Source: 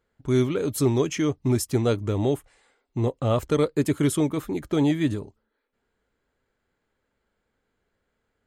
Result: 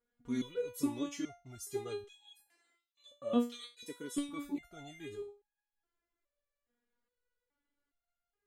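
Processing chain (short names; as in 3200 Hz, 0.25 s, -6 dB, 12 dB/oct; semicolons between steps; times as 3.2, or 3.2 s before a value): 2.04–4.29 LFO high-pass square 1.4 Hz 240–3500 Hz; stepped resonator 2.4 Hz 240–830 Hz; gain +2 dB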